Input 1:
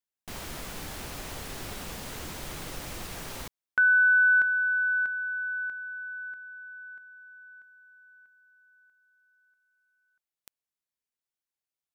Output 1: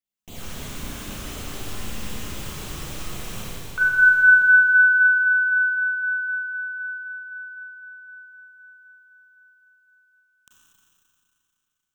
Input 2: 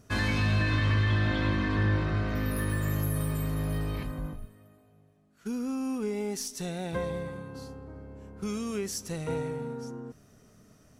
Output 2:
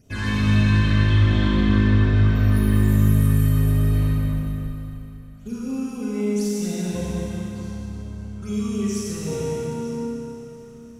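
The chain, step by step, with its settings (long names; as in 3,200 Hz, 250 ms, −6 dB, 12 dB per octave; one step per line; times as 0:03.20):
all-pass phaser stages 8, 3.9 Hz, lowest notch 540–1,800 Hz
four-comb reverb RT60 3.1 s, combs from 30 ms, DRR −6 dB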